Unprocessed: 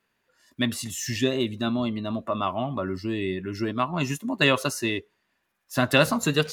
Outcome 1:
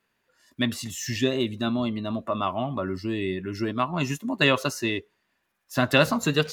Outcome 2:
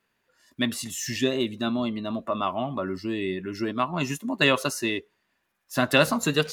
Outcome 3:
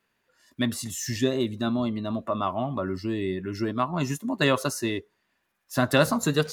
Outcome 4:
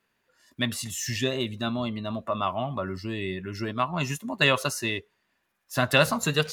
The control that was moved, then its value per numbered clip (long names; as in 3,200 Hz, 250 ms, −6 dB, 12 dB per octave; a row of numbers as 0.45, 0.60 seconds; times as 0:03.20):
dynamic equaliser, frequency: 9,900, 100, 2,700, 300 Hertz